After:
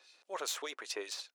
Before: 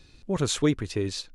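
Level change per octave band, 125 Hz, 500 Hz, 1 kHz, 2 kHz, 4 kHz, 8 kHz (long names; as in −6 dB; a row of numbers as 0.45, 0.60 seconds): below −40 dB, −13.5 dB, −4.0 dB, −5.5 dB, −7.0 dB, −7.0 dB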